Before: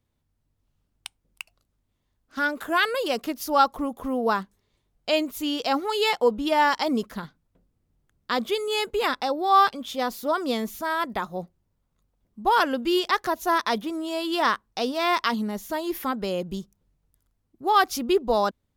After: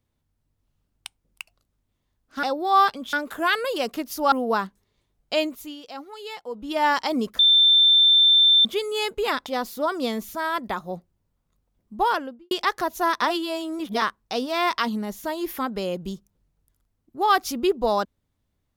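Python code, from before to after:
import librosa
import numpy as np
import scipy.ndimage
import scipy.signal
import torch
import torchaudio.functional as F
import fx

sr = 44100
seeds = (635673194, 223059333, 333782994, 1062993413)

y = fx.studio_fade_out(x, sr, start_s=12.42, length_s=0.55)
y = fx.edit(y, sr, fx.cut(start_s=3.62, length_s=0.46),
    fx.fade_down_up(start_s=5.15, length_s=1.49, db=-13.5, fade_s=0.37),
    fx.bleep(start_s=7.15, length_s=1.26, hz=3560.0, db=-12.5),
    fx.move(start_s=9.22, length_s=0.7, to_s=2.43),
    fx.reverse_span(start_s=13.68, length_s=0.8), tone=tone)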